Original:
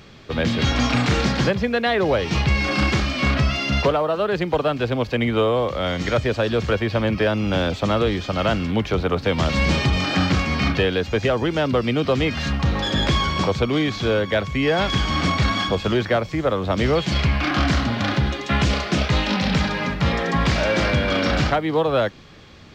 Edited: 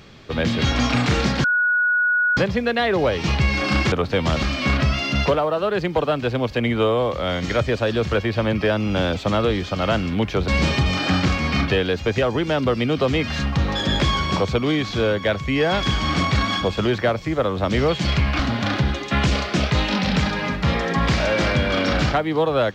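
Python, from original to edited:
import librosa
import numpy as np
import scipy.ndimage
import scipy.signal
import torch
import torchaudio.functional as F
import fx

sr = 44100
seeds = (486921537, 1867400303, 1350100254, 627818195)

y = fx.edit(x, sr, fx.insert_tone(at_s=1.44, length_s=0.93, hz=1460.0, db=-15.5),
    fx.move(start_s=9.05, length_s=0.5, to_s=2.99),
    fx.cut(start_s=17.46, length_s=0.31), tone=tone)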